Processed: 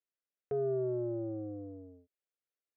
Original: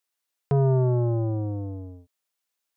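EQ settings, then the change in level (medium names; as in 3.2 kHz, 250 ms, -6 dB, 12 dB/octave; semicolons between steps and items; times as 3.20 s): high-pass 270 Hz 6 dB/octave; low-pass 1.4 kHz 12 dB/octave; static phaser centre 390 Hz, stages 4; -4.0 dB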